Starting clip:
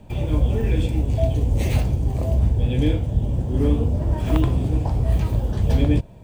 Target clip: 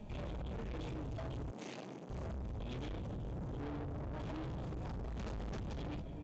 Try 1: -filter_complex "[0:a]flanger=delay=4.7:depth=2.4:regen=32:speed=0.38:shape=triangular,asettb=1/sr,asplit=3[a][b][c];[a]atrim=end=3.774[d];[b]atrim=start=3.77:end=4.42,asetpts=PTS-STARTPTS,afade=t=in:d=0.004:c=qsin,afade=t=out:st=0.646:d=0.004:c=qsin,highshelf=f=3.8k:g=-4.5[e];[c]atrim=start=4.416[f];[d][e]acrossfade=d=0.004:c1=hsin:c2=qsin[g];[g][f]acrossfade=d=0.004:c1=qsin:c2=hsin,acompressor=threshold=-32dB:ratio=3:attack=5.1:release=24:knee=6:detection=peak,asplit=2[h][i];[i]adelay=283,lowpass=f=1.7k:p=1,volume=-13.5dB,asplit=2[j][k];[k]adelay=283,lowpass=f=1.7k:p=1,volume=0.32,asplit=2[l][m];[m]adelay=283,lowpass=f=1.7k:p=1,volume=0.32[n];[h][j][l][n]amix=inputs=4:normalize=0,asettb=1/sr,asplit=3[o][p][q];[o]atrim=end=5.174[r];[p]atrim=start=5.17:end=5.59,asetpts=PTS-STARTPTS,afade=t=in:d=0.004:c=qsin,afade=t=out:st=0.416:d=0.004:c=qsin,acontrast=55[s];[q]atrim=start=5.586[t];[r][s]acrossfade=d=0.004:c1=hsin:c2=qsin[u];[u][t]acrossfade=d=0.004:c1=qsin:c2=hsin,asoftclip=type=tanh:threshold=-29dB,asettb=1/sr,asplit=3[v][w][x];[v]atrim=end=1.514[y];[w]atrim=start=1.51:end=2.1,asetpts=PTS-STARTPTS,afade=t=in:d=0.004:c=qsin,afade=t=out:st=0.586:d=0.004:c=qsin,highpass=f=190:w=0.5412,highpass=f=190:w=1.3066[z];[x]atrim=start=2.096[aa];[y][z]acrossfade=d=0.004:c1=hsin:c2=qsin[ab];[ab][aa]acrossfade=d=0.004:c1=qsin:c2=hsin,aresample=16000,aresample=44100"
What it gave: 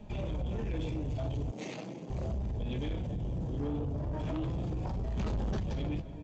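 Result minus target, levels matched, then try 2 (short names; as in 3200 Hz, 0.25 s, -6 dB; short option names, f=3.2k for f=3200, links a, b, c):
soft clip: distortion -7 dB
-filter_complex "[0:a]flanger=delay=4.7:depth=2.4:regen=32:speed=0.38:shape=triangular,asettb=1/sr,asplit=3[a][b][c];[a]atrim=end=3.774[d];[b]atrim=start=3.77:end=4.42,asetpts=PTS-STARTPTS,afade=t=in:d=0.004:c=qsin,afade=t=out:st=0.646:d=0.004:c=qsin,highshelf=f=3.8k:g=-4.5[e];[c]atrim=start=4.416[f];[d][e]acrossfade=d=0.004:c1=hsin:c2=qsin[g];[g][f]acrossfade=d=0.004:c1=qsin:c2=hsin,acompressor=threshold=-32dB:ratio=3:attack=5.1:release=24:knee=6:detection=peak,asplit=2[h][i];[i]adelay=283,lowpass=f=1.7k:p=1,volume=-13.5dB,asplit=2[j][k];[k]adelay=283,lowpass=f=1.7k:p=1,volume=0.32,asplit=2[l][m];[m]adelay=283,lowpass=f=1.7k:p=1,volume=0.32[n];[h][j][l][n]amix=inputs=4:normalize=0,asettb=1/sr,asplit=3[o][p][q];[o]atrim=end=5.174[r];[p]atrim=start=5.17:end=5.59,asetpts=PTS-STARTPTS,afade=t=in:d=0.004:c=qsin,afade=t=out:st=0.416:d=0.004:c=qsin,acontrast=55[s];[q]atrim=start=5.586[t];[r][s]acrossfade=d=0.004:c1=hsin:c2=qsin[u];[u][t]acrossfade=d=0.004:c1=qsin:c2=hsin,asoftclip=type=tanh:threshold=-40.5dB,asettb=1/sr,asplit=3[v][w][x];[v]atrim=end=1.514[y];[w]atrim=start=1.51:end=2.1,asetpts=PTS-STARTPTS,afade=t=in:d=0.004:c=qsin,afade=t=out:st=0.586:d=0.004:c=qsin,highpass=f=190:w=0.5412,highpass=f=190:w=1.3066[z];[x]atrim=start=2.096[aa];[y][z]acrossfade=d=0.004:c1=hsin:c2=qsin[ab];[ab][aa]acrossfade=d=0.004:c1=qsin:c2=hsin,aresample=16000,aresample=44100"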